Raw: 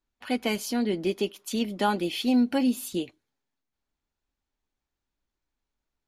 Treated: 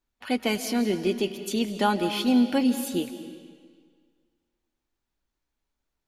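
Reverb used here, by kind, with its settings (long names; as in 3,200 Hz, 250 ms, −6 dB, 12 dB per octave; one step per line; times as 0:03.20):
comb and all-pass reverb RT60 1.8 s, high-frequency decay 0.9×, pre-delay 115 ms, DRR 10 dB
level +1.5 dB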